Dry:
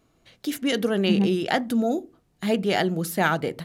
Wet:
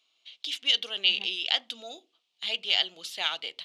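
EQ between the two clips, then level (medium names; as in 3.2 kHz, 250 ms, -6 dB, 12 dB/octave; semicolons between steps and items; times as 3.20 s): high-pass 1.4 kHz 12 dB/octave; tape spacing loss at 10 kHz 26 dB; resonant high shelf 2.3 kHz +11.5 dB, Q 3; 0.0 dB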